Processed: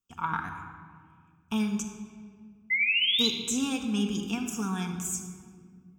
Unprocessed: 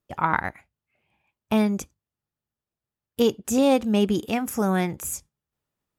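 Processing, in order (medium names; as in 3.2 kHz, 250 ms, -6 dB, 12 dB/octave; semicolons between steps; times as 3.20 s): treble shelf 2.9 kHz +11.5 dB; static phaser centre 2.9 kHz, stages 8; painted sound rise, 2.70–3.28 s, 2–4.1 kHz -18 dBFS; simulated room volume 3300 m³, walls mixed, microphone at 1.7 m; trim -9 dB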